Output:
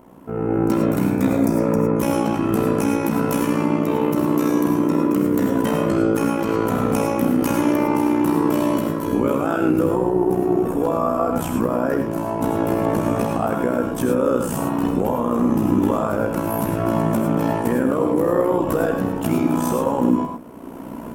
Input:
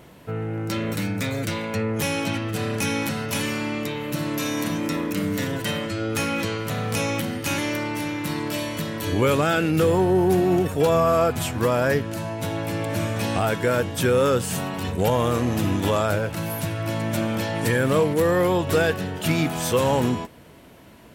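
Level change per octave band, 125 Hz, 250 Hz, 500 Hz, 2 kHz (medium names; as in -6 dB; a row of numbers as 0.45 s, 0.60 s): -0.5 dB, +7.0 dB, +2.5 dB, -4.5 dB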